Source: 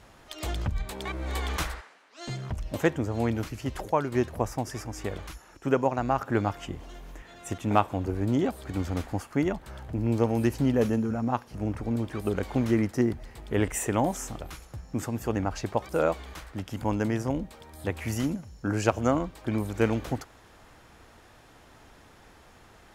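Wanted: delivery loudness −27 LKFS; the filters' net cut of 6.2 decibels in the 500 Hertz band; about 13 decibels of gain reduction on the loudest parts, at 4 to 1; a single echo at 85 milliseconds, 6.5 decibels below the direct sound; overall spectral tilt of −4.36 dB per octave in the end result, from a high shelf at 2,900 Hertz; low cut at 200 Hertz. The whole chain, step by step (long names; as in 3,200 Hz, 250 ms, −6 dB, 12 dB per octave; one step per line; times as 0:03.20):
high-pass filter 200 Hz
parametric band 500 Hz −8 dB
high-shelf EQ 2,900 Hz +5 dB
downward compressor 4 to 1, threshold −35 dBFS
single-tap delay 85 ms −6.5 dB
level +12 dB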